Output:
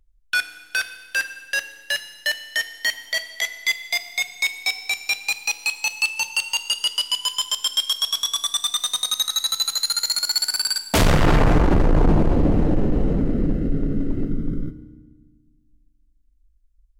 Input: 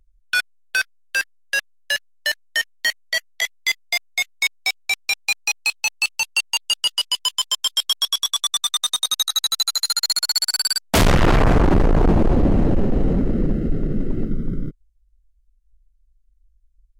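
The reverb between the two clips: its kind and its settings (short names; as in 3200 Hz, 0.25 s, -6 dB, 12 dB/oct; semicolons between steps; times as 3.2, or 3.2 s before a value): FDN reverb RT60 1.3 s, low-frequency decay 1.5×, high-frequency decay 1×, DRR 9.5 dB; gain -2 dB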